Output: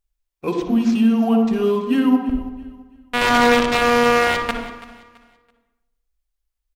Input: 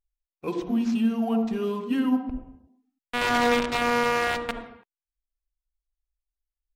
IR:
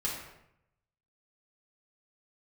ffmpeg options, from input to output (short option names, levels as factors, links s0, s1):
-filter_complex "[0:a]aecho=1:1:332|664|996:0.133|0.0413|0.0128,asplit=2[s0][s1];[1:a]atrim=start_sample=2205,highshelf=f=8800:g=-9,adelay=56[s2];[s1][s2]afir=irnorm=-1:irlink=0,volume=0.211[s3];[s0][s3]amix=inputs=2:normalize=0,volume=2.24"